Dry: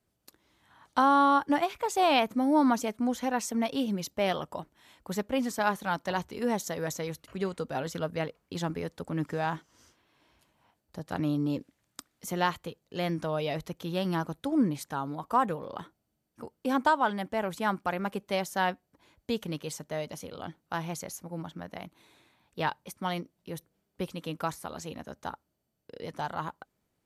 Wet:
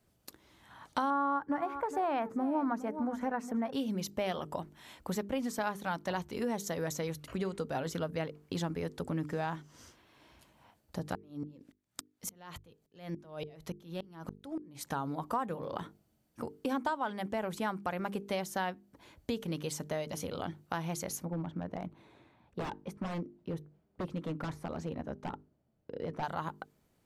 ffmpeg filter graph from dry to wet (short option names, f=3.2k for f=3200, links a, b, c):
-filter_complex "[0:a]asettb=1/sr,asplit=3[a][b][c];[a]atrim=end=1.104[d];[b]atrim=start=1.1:end=3.73,asetpts=PTS-STARTPTS,afade=t=in:d=0.004:c=qsin,afade=t=out:st=2.626:d=0.004:c=qsin,highshelf=f=2.3k:t=q:w=1.5:g=-12,aecho=1:1:412:0.158,atrim=end_sample=115983[e];[c]atrim=start=3.726[f];[d][e]acrossfade=d=0.004:c1=hsin:c2=qsin[g];[g][f]acrossfade=d=0.004:c1=qsin:c2=hsin,asettb=1/sr,asplit=3[h][i][j];[h]atrim=end=11.154[k];[i]atrim=start=11.15:end=14.87,asetpts=PTS-STARTPTS,afade=t=in:d=0.004:c=qsin,afade=t=out:st=3.716:d=0.004:c=qsin,acompressor=threshold=-35dB:ratio=6:attack=3.2:release=140:knee=1:detection=peak,aeval=exprs='val(0)*pow(10,-36*if(lt(mod(-3.5*n/s,1),2*abs(-3.5)/1000),1-mod(-3.5*n/s,1)/(2*abs(-3.5)/1000),(mod(-3.5*n/s,1)-2*abs(-3.5)/1000)/(1-2*abs(-3.5)/1000))/20)':c=same[l];[j]atrim=start=14.866[m];[k][l]acrossfade=d=0.004:c1=hsin:c2=qsin[n];[n][m]acrossfade=d=0.004:c1=qsin:c2=hsin,asettb=1/sr,asplit=3[o][p][q];[o]atrim=end=21.254[r];[p]atrim=start=21.25:end=26.23,asetpts=PTS-STARTPTS,afade=t=in:d=0.004:c=qsin,afade=t=out:st=4.976:d=0.004:c=qsin,aeval=exprs='0.0282*(abs(mod(val(0)/0.0282+3,4)-2)-1)':c=same,lowpass=f=1k:p=1[s];[q]atrim=start=26.226[t];[r][s]acrossfade=d=0.004:c1=hsin:c2=qsin[u];[u][t]acrossfade=d=0.004:c1=qsin:c2=hsin,lowshelf=f=450:g=3,bandreject=f=50:t=h:w=6,bandreject=f=100:t=h:w=6,bandreject=f=150:t=h:w=6,bandreject=f=200:t=h:w=6,bandreject=f=250:t=h:w=6,bandreject=f=300:t=h:w=6,bandreject=f=350:t=h:w=6,bandreject=f=400:t=h:w=6,bandreject=f=450:t=h:w=6,acompressor=threshold=-39dB:ratio=3,volume=4.5dB"